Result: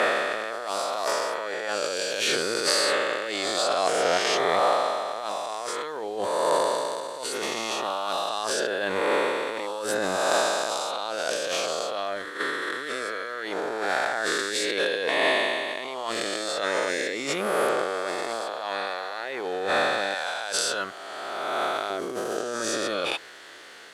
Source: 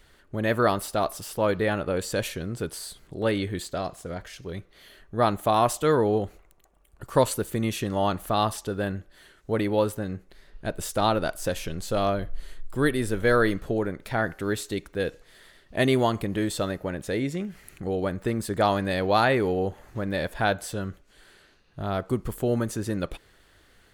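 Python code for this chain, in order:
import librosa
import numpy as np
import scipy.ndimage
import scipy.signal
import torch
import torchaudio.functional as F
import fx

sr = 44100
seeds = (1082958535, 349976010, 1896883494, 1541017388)

y = fx.spec_swells(x, sr, rise_s=2.42)
y = fx.dynamic_eq(y, sr, hz=4800.0, q=0.79, threshold_db=-41.0, ratio=4.0, max_db=5)
y = fx.over_compress(y, sr, threshold_db=-30.0, ratio=-1.0)
y = fx.dmg_noise_colour(y, sr, seeds[0], colour='white', level_db=-58.0)
y = fx.bandpass_edges(y, sr, low_hz=fx.steps((0.0, 490.0), (20.14, 790.0), (21.9, 440.0)), high_hz=7200.0)
y = F.gain(torch.from_numpy(y), 5.0).numpy()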